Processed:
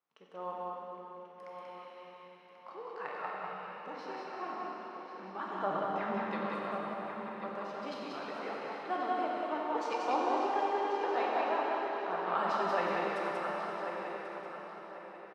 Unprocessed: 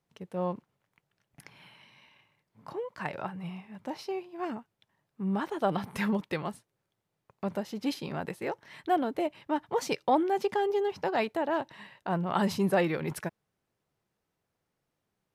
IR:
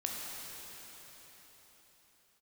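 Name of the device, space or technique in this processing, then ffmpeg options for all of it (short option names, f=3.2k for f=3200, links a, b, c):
station announcement: -filter_complex "[0:a]asettb=1/sr,asplit=3[a][b][c];[a]atrim=end=5.644[d];[b]atrim=start=5.64:end=6.31,asetpts=PTS-STARTPTS,afade=t=in:d=0.004:c=qsin,afade=t=out:st=0.666:d=0.004:c=qsin,aemphasis=mode=reproduction:type=riaa[e];[c]atrim=start=6.306[f];[d][e]acrossfade=d=0.004:c1=hsin:c2=qsin[g];[g][f]acrossfade=d=0.004:c1=qsin:c2=hsin,highpass=400,lowpass=4.5k,equalizer=f=1.2k:t=o:w=0.53:g=8.5,aecho=1:1:93.29|186.6:0.282|0.708,asplit=2[h][i];[i]adelay=1088,lowpass=f=4k:p=1,volume=-8dB,asplit=2[j][k];[k]adelay=1088,lowpass=f=4k:p=1,volume=0.34,asplit=2[l][m];[m]adelay=1088,lowpass=f=4k:p=1,volume=0.34,asplit=2[n][o];[o]adelay=1088,lowpass=f=4k:p=1,volume=0.34[p];[h][j][l][n][p]amix=inputs=5:normalize=0[q];[1:a]atrim=start_sample=2205[r];[q][r]afir=irnorm=-1:irlink=0,volume=-8.5dB"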